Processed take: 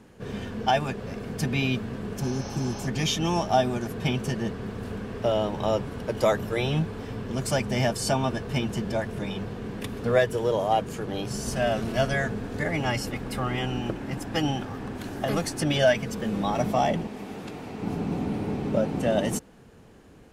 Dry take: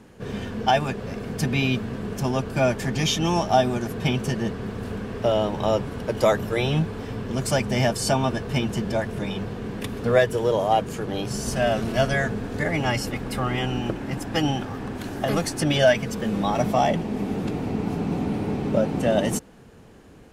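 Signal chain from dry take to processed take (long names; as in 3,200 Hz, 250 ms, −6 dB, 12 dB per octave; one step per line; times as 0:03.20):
0:02.26–0:02.85: healed spectral selection 410–6,500 Hz before
0:17.07–0:17.82: low-shelf EQ 460 Hz −11 dB
level −3 dB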